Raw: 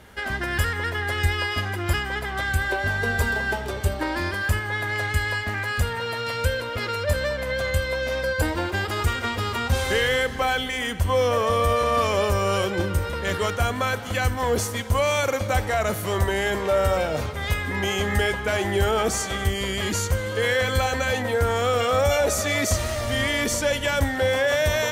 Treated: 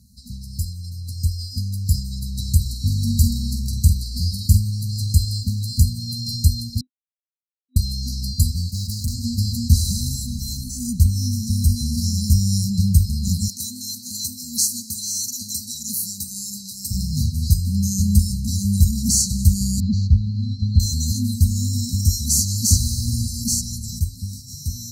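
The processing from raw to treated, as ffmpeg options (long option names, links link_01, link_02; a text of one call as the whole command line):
ffmpeg -i in.wav -filter_complex "[0:a]asettb=1/sr,asplit=3[link_01][link_02][link_03];[link_01]atrim=end=2.604[link_04];[link_02]atrim=start=2.6:end=4.71,asetpts=PTS-STARTPTS,afade=type=in:duration=0.004:curve=qsin,afade=type=out:start_time=2.106:duration=0.004:curve=qsin,asplit=2[link_05][link_06];[link_06]adelay=48,volume=-9dB[link_07];[link_05][link_07]amix=inputs=2:normalize=0,atrim=end_sample=93051[link_08];[link_03]atrim=start=4.706[link_09];[link_04][link_08]acrossfade=duration=0.004:curve1=hsin:curve2=qsin[link_10];[link_10][link_09]acrossfade=duration=0.004:curve1=qsin:curve2=hsin,asettb=1/sr,asplit=3[link_11][link_12][link_13];[link_11]atrim=end=8.724[link_14];[link_12]atrim=start=8.72:end=9.14,asetpts=PTS-STARTPTS,afade=type=in:duration=0.004:curve=qsin,afade=type=out:start_time=0.416:duration=0.004:curve=qsin,asoftclip=type=hard:threshold=-27.5dB[link_15];[link_13]atrim=start=9.136[link_16];[link_14][link_15]acrossfade=duration=0.004:curve1=hsin:curve2=qsin[link_17];[link_17][link_16]acrossfade=duration=0.004:curve1=qsin:curve2=hsin,asettb=1/sr,asplit=3[link_18][link_19][link_20];[link_18]atrim=end=13.484[link_21];[link_19]atrim=start=13.48:end=16.91,asetpts=PTS-STARTPTS,afade=type=in:duration=0.004:curve=qsin,afade=type=out:start_time=3.426:duration=0.004:curve=qsin,highpass=450[link_22];[link_20]atrim=start=16.906[link_23];[link_21][link_22]acrossfade=duration=0.004:curve1=hsin:curve2=qsin[link_24];[link_24][link_23]acrossfade=duration=0.004:curve1=qsin:curve2=hsin,asettb=1/sr,asplit=3[link_25][link_26][link_27];[link_25]atrim=end=19.804[link_28];[link_26]atrim=start=19.8:end=20.8,asetpts=PTS-STARTPTS,afade=type=in:duration=0.004:curve=qsin,afade=type=out:start_time=0.996:duration=0.004:curve=qsin,lowpass=frequency=3200:width=0.5412,lowpass=frequency=3200:width=1.3066[link_29];[link_27]atrim=start=20.796[link_30];[link_28][link_29]acrossfade=duration=0.004:curve1=hsin:curve2=qsin[link_31];[link_31][link_30]acrossfade=duration=0.004:curve1=qsin:curve2=hsin,asplit=3[link_32][link_33][link_34];[link_32]atrim=end=6.81,asetpts=PTS-STARTPTS,afade=type=out:start_time=6.806:duration=0.004:curve=hsin[link_35];[link_33]atrim=start=6.81:end=7.76,asetpts=PTS-STARTPTS,volume=0[link_36];[link_34]atrim=start=7.76,asetpts=PTS-STARTPTS,afade=type=in:duration=0.004:curve=hsin[link_37];[link_35][link_36][link_37]concat=n=3:v=0:a=1,highpass=45,afftfilt=real='re*(1-between(b*sr/4096,250,3900))':imag='im*(1-between(b*sr/4096,250,3900))':win_size=4096:overlap=0.75,dynaudnorm=framelen=350:gausssize=11:maxgain=13dB" out.wav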